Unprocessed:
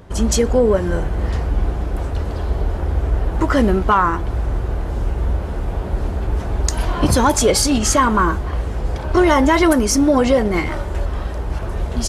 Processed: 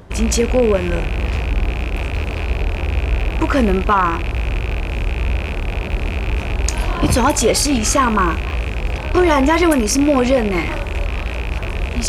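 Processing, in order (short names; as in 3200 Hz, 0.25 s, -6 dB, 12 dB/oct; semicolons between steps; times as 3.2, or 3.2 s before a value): rattling part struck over -26 dBFS, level -16 dBFS; reverse; upward compressor, threshold -18 dBFS; reverse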